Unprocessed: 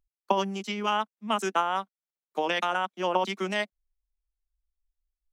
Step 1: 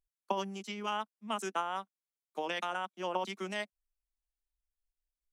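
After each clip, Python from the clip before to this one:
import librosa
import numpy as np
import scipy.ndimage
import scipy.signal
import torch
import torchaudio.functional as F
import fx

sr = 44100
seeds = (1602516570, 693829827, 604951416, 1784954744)

y = fx.peak_eq(x, sr, hz=9500.0, db=5.5, octaves=0.97)
y = y * librosa.db_to_amplitude(-8.5)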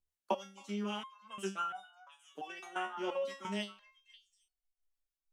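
y = fx.echo_stepped(x, sr, ms=268, hz=1200.0, octaves=1.4, feedback_pct=70, wet_db=-8.5)
y = fx.rotary(y, sr, hz=6.0)
y = fx.resonator_held(y, sr, hz=2.9, low_hz=73.0, high_hz=740.0)
y = y * librosa.db_to_amplitude(11.0)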